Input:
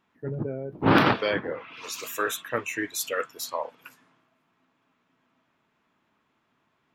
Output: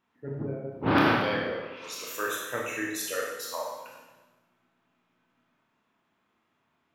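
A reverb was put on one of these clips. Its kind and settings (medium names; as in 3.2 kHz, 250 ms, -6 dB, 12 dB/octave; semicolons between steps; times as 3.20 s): Schroeder reverb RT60 1.1 s, combs from 25 ms, DRR -1.5 dB; trim -6 dB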